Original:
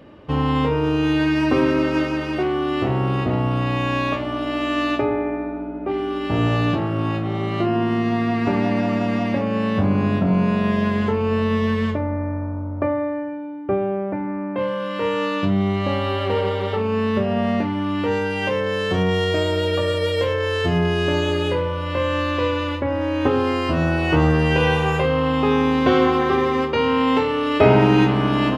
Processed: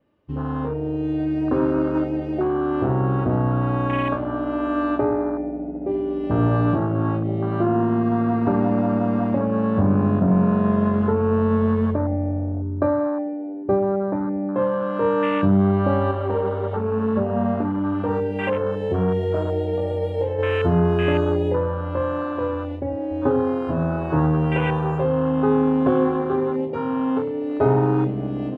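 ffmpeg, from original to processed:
-filter_complex "[0:a]asettb=1/sr,asplit=3[a][b][c];[a]atrim=end=16.114[d];[b]atrim=start=16.11:end=20.39,asetpts=PTS-STARTPTS,afade=t=in:d=0.004:c=qsin,afade=t=out:st=4.276:d=0.004:c=qsin,flanger=delay=0.8:depth=3.7:regen=-50:speed=1.5:shape=triangular[e];[c]atrim=start=20.386[f];[d][e]acrossfade=d=0.004:c1=hsin:c2=qsin[g];[g][f]acrossfade=d=0.004:c1=qsin:c2=hsin,asettb=1/sr,asplit=3[h][i][j];[h]atrim=end=23.224[k];[i]atrim=start=23.22:end=28.09,asetpts=PTS-STARTPTS,afade=t=in:d=0.004:c=qsin,afade=t=out:st=4.866:d=0.004:c=qsin,aecho=1:1:7.3:0.59,atrim=end_sample=214767[l];[j]atrim=start=28.086[m];[k][l]acrossfade=d=0.004:c1=hsin:c2=qsin[n];[n][m]acrossfade=d=0.004:c1=qsin:c2=hsin,dynaudnorm=f=180:g=17:m=12dB,afwtdn=0.141,adynamicequalizer=threshold=0.00316:dfrequency=5300:dqfactor=1.7:tfrequency=5300:tqfactor=1.7:attack=5:release=100:ratio=0.375:range=3.5:mode=cutabove:tftype=bell,volume=-6dB"

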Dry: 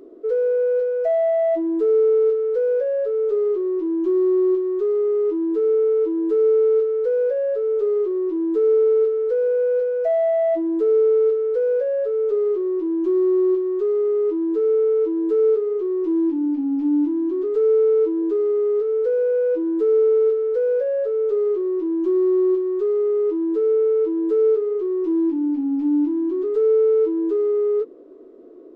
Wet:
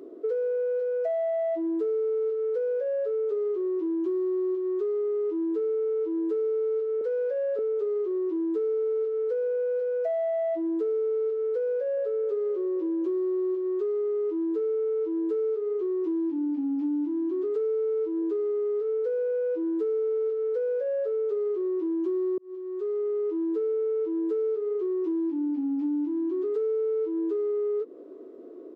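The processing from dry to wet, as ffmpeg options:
-filter_complex "[0:a]asettb=1/sr,asplit=3[a][b][c];[a]atrim=end=7.014[d];[b]atrim=start=7.01:end=7.59,asetpts=PTS-STARTPTS,afade=t=in:d=0.004:c=qsin,afade=t=out:st=0.576:d=0.004:c=qsin,highpass=450[e];[c]atrim=start=7.586[f];[d][e]acrossfade=d=0.004:c1=hsin:c2=qsin[g];[g][f]acrossfade=d=0.004:c1=qsin:c2=hsin,asplit=2[h][i];[i]afade=t=in:st=11.7:d=0.01,afade=t=out:st=12.14:d=0.01,aecho=0:1:260|520|780|1040|1300|1560|1820:0.149624|0.0972553|0.063216|0.0410904|0.0267087|0.0173607|0.0112844[j];[h][j]amix=inputs=2:normalize=0,asplit=2[k][l];[k]atrim=end=22.38,asetpts=PTS-STARTPTS,afade=t=out:st=22.376:d=0.004:c=hsin[m];[l]atrim=start=22.38,asetpts=PTS-STARTPTS,afade=t=in:d=1.2[n];[m][n]concat=n=2:v=0:a=1,highpass=140,acompressor=threshold=-26dB:ratio=6"

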